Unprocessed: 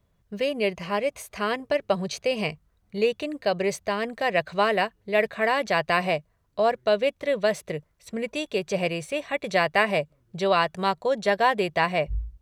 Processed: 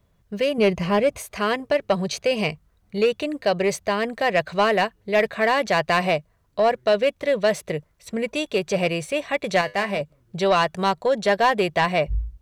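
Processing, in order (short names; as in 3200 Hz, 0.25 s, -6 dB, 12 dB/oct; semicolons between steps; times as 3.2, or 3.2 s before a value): 0.58–1.18 low shelf 400 Hz +9 dB; soft clip -14.5 dBFS, distortion -18 dB; 9.61–10.01 resonator 100 Hz, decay 0.26 s, harmonics all, mix 60%; gain +4.5 dB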